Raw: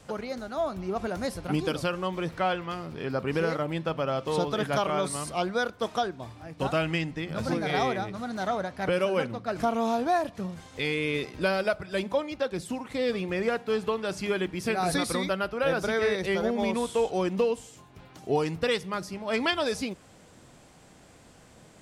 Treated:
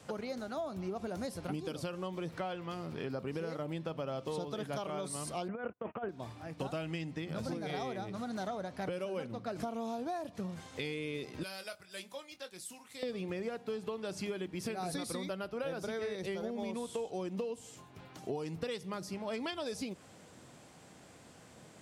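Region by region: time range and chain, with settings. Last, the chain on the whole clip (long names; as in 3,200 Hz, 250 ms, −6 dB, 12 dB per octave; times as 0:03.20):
0:05.48–0:06.09: Butterworth low-pass 2,900 Hz 96 dB per octave + noise gate −41 dBFS, range −34 dB + compressor whose output falls as the input rises −30 dBFS, ratio −0.5
0:11.43–0:13.03: first-order pre-emphasis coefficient 0.9 + double-tracking delay 22 ms −10 dB
whole clip: high-pass filter 89 Hz; dynamic equaliser 1,600 Hz, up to −6 dB, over −41 dBFS, Q 0.71; downward compressor, threshold −33 dBFS; level −2 dB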